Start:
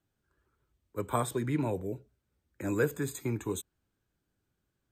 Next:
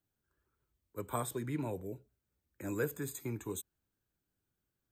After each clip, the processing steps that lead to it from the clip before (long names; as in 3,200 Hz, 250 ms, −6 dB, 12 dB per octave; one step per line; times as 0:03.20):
high-shelf EQ 11,000 Hz +12 dB
level −6.5 dB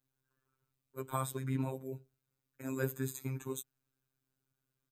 comb filter 6.8 ms, depth 81%
phases set to zero 132 Hz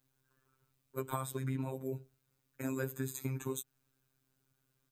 downward compressor 6 to 1, threshold −40 dBFS, peak gain reduction 12 dB
level +7 dB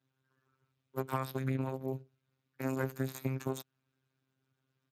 harmonic generator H 6 −19 dB, 7 −30 dB, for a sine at −17.5 dBFS
level +1.5 dB
Speex 24 kbit/s 32,000 Hz